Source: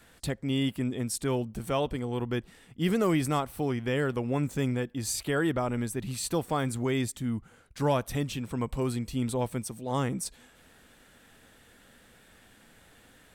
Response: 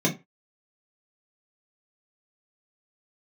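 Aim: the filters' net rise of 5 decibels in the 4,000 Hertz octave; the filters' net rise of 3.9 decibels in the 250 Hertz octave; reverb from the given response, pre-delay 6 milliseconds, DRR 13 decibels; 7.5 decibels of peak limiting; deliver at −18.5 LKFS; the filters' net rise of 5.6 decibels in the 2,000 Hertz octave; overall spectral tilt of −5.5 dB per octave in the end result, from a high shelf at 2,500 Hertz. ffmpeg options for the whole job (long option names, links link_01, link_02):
-filter_complex "[0:a]equalizer=frequency=250:width_type=o:gain=4.5,equalizer=frequency=2000:width_type=o:gain=7.5,highshelf=frequency=2500:gain=-6,equalizer=frequency=4000:width_type=o:gain=9,alimiter=limit=-19.5dB:level=0:latency=1,asplit=2[link_01][link_02];[1:a]atrim=start_sample=2205,adelay=6[link_03];[link_02][link_03]afir=irnorm=-1:irlink=0,volume=-25dB[link_04];[link_01][link_04]amix=inputs=2:normalize=0,volume=10.5dB"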